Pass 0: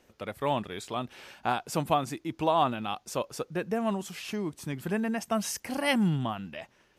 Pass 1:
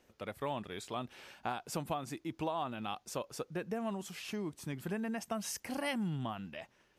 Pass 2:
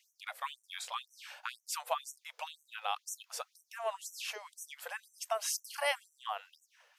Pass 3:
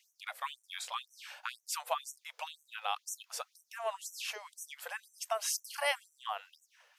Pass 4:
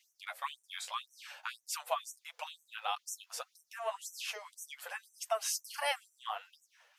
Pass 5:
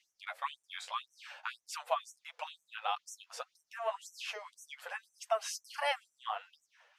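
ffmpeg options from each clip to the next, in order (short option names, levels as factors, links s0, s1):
-af "acompressor=threshold=0.0398:ratio=5,volume=0.562"
-af "afftfilt=real='re*gte(b*sr/1024,430*pow(5700/430,0.5+0.5*sin(2*PI*2*pts/sr)))':imag='im*gte(b*sr/1024,430*pow(5700/430,0.5+0.5*sin(2*PI*2*pts/sr)))':win_size=1024:overlap=0.75,volume=1.88"
-af "lowshelf=f=420:g=-4.5,volume=1.12"
-af "flanger=delay=5.7:depth=5.7:regen=14:speed=1.7:shape=sinusoidal,volume=1.33"
-af "aemphasis=mode=reproduction:type=50fm,volume=1.19"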